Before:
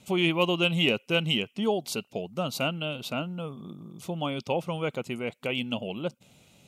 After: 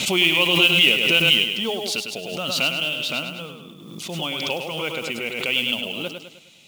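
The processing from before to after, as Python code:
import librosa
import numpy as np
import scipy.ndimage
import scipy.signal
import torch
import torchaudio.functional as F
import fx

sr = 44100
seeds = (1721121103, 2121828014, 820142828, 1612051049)

p1 = fx.weighting(x, sr, curve='D')
p2 = fx.mod_noise(p1, sr, seeds[0], snr_db=20)
p3 = p2 + fx.echo_feedback(p2, sr, ms=103, feedback_pct=46, wet_db=-6.5, dry=0)
p4 = fx.pre_swell(p3, sr, db_per_s=40.0)
y = p4 * librosa.db_to_amplitude(-1.0)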